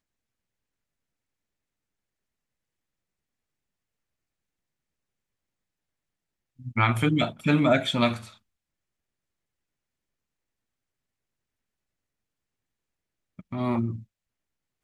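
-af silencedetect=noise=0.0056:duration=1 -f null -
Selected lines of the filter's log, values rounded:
silence_start: 0.00
silence_end: 6.60 | silence_duration: 6.60
silence_start: 8.34
silence_end: 13.39 | silence_duration: 5.05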